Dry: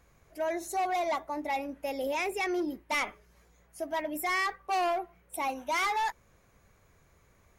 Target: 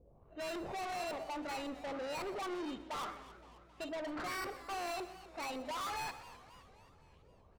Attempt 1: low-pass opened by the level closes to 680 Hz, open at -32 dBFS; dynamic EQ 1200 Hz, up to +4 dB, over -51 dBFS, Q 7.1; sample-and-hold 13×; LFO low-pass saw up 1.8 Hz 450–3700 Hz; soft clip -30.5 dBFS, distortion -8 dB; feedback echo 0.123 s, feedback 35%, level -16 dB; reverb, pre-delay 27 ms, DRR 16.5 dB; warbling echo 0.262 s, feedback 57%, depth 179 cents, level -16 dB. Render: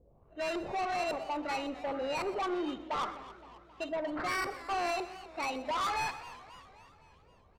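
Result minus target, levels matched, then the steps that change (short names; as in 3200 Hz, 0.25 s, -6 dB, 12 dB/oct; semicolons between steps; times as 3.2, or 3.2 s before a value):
soft clip: distortion -4 dB
change: soft clip -39 dBFS, distortion -4 dB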